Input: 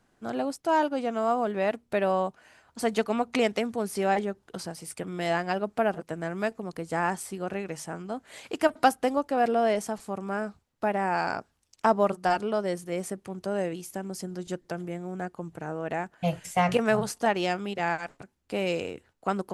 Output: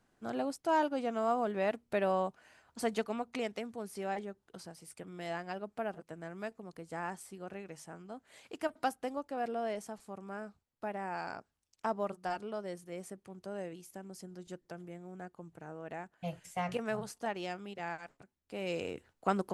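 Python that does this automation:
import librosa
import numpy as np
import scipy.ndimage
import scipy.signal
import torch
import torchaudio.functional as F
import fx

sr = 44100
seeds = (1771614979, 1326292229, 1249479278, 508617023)

y = fx.gain(x, sr, db=fx.line((2.79, -5.5), (3.33, -12.0), (18.54, -12.0), (18.95, -2.5)))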